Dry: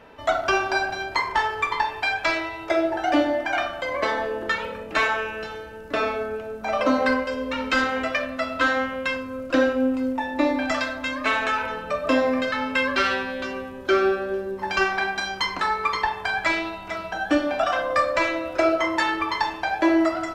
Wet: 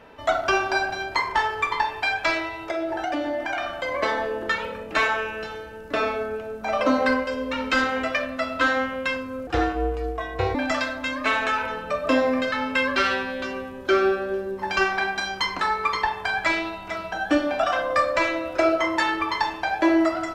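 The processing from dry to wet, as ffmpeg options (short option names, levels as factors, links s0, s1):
-filter_complex "[0:a]asettb=1/sr,asplit=3[s0][s1][s2];[s0]atrim=end=2.514[s3];[s1]atrim=start=2.51:end=3.78,asetpts=PTS-STARTPTS,afade=t=in:d=0.004:c=qsin,afade=t=out:st=1.266:d=0.004:c=qsin,acompressor=threshold=0.0708:ratio=6:attack=3.2:release=140:knee=1:detection=peak[s4];[s2]atrim=start=3.776[s5];[s3][s4]acrossfade=d=0.004:c1=hsin:c2=qsin[s6];[s6][s5]acrossfade=d=0.004:c1=qsin:c2=hsin,asettb=1/sr,asplit=3[s7][s8][s9];[s7]atrim=end=9.474[s10];[s8]atrim=start=9.47:end=10.55,asetpts=PTS-STARTPTS,afade=t=in:d=0.004:c=qsin,afade=t=out:st=1.076:d=0.004:c=qsin,aeval=exprs='val(0)*sin(2*PI*200*n/s)':c=same[s11];[s9]atrim=start=10.546[s12];[s10][s11]acrossfade=d=0.004:c1=hsin:c2=qsin[s13];[s13][s12]acrossfade=d=0.004:c1=qsin:c2=hsin"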